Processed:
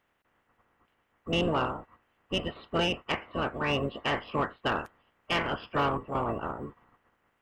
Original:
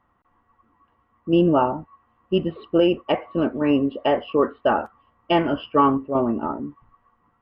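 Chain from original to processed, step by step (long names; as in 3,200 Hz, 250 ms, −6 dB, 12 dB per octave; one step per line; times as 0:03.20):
ceiling on every frequency bin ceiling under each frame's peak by 23 dB
soft clipping −12 dBFS, distortion −16 dB
level −7.5 dB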